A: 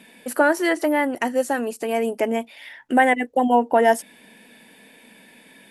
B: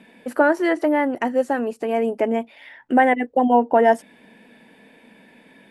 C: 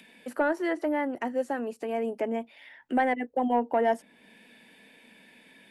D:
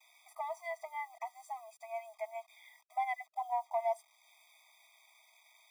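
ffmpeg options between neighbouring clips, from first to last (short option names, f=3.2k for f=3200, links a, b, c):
-af "lowpass=f=1.5k:p=1,volume=2dB"
-filter_complex "[0:a]acrossover=split=150|480|2000[a][b][c][d];[d]acompressor=mode=upward:threshold=-40dB:ratio=2.5[e];[a][b][c][e]amix=inputs=4:normalize=0,asoftclip=type=tanh:threshold=-4.5dB,volume=-8.5dB"
-af "adynamicequalizer=threshold=0.00282:dfrequency=6300:dqfactor=0.77:tfrequency=6300:tqfactor=0.77:attack=5:release=100:ratio=0.375:range=3:mode=boostabove:tftype=bell,acrusher=bits=8:mix=0:aa=0.000001,afftfilt=real='re*eq(mod(floor(b*sr/1024/640),2),1)':imag='im*eq(mod(floor(b*sr/1024/640),2),1)':win_size=1024:overlap=0.75,volume=-7dB"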